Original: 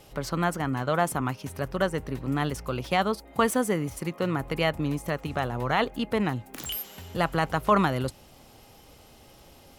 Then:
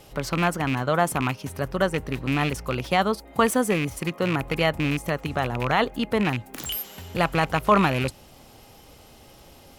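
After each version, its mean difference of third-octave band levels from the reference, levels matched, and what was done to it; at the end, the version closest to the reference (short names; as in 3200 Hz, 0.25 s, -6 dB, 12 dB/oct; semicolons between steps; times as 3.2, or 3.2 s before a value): 1.0 dB: rattling part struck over -27 dBFS, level -21 dBFS; gain +3 dB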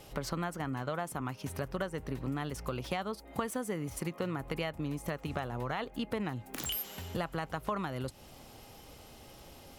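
4.5 dB: compressor 6:1, threshold -32 dBFS, peak gain reduction 15.5 dB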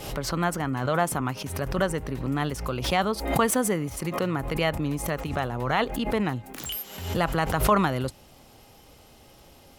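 3.0 dB: backwards sustainer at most 68 dB/s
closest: first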